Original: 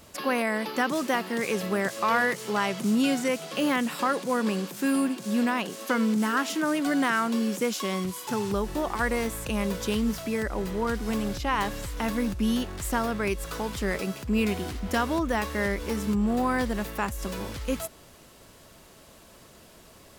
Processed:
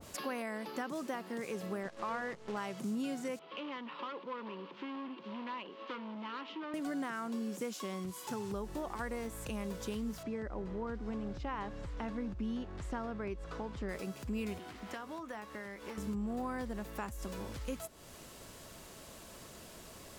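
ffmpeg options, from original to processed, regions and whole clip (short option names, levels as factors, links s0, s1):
-filter_complex "[0:a]asettb=1/sr,asplit=3[s0][s1][s2];[s0]atrim=end=1.834[s3];[s1]atrim=start=1.83:end=2.57,asetpts=PTS-STARTPTS,afade=t=in:d=0.004:c=qsin,afade=t=out:st=0.736:d=0.004:c=qsin,acrusher=bits=6:dc=4:mix=0:aa=0.000001,adynamicsmooth=sensitivity=1.5:basefreq=3800[s4];[s2]atrim=start=2.566[s5];[s3][s4]acrossfade=d=0.004:c1=hsin:c2=qsin[s6];[s6][s5]acrossfade=d=0.004:c1=qsin:c2=hsin,asettb=1/sr,asplit=3[s7][s8][s9];[s7]atrim=end=3.394[s10];[s8]atrim=start=3.39:end=6.74,asetpts=PTS-STARTPTS,afade=t=in:d=0.004:c=qsin,afade=t=out:st=3.346:d=0.004:c=qsin,adynamicsmooth=sensitivity=2.5:basefreq=2600,asoftclip=type=hard:threshold=0.0501,highpass=380,equalizer=f=460:t=q:w=4:g=-3,equalizer=f=710:t=q:w=4:g=-10,equalizer=f=1000:t=q:w=4:g=5,equalizer=f=1600:t=q:w=4:g=-6,equalizer=f=3000:t=q:w=4:g=5,lowpass=f=4100:w=0.5412,lowpass=f=4100:w=1.3066[s11];[s9]atrim=start=6.736[s12];[s10][s11]acrossfade=d=0.004:c1=hsin:c2=qsin[s13];[s13][s12]acrossfade=d=0.004:c1=qsin:c2=hsin,asettb=1/sr,asplit=3[s14][s15][s16];[s14]atrim=end=10.234[s17];[s15]atrim=start=10.23:end=13.89,asetpts=PTS-STARTPTS,afade=t=in:d=0.004:c=qsin,afade=t=out:st=3.656:d=0.004:c=qsin,lowpass=5600,highshelf=f=2500:g=-10[s18];[s16]atrim=start=13.886[s19];[s17][s18]acrossfade=d=0.004:c1=hsin:c2=qsin[s20];[s20][s19]acrossfade=d=0.004:c1=qsin:c2=hsin,asettb=1/sr,asplit=3[s21][s22][s23];[s21]atrim=end=14.584[s24];[s22]atrim=start=14.58:end=15.98,asetpts=PTS-STARTPTS,afade=t=in:d=0.004:c=qsin,afade=t=out:st=1.396:d=0.004:c=qsin,highpass=130,asplit=2[s25][s26];[s26]adelay=19,volume=0.237[s27];[s25][s27]amix=inputs=2:normalize=0,atrim=end_sample=61740,acrossover=split=700|3900[s28][s29][s30];[s28]acompressor=threshold=0.00794:ratio=4[s31];[s29]acompressor=threshold=0.0141:ratio=4[s32];[s30]acompressor=threshold=0.00158:ratio=4[s33];[s31][s32][s33]amix=inputs=3:normalize=0[s34];[s23]atrim=start=15.976[s35];[s24][s34]acrossfade=d=0.004:c1=hsin:c2=qsin[s36];[s36][s35]acrossfade=d=0.004:c1=qsin:c2=hsin,equalizer=f=7300:w=1.5:g=2.5,acompressor=threshold=0.00562:ratio=2,adynamicequalizer=threshold=0.00251:dfrequency=1500:dqfactor=0.7:tfrequency=1500:tqfactor=0.7:attack=5:release=100:ratio=0.375:range=3:mode=cutabove:tftype=highshelf"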